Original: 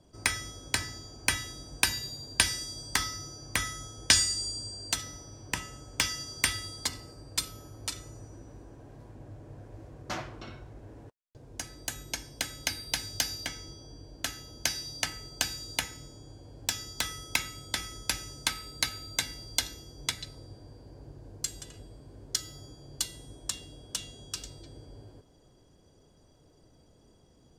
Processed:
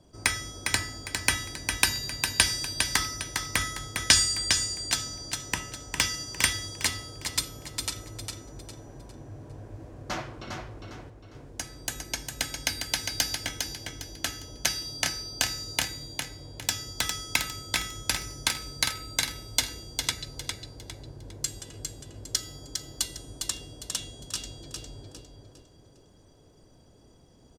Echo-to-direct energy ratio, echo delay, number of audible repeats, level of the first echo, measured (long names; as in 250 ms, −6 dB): −5.0 dB, 405 ms, 4, −5.5 dB